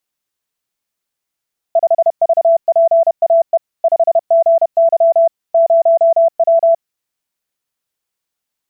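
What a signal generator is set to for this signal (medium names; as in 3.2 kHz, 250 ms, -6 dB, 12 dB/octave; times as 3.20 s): Morse "5VPAE 5GY 0W" 31 wpm 666 Hz -6.5 dBFS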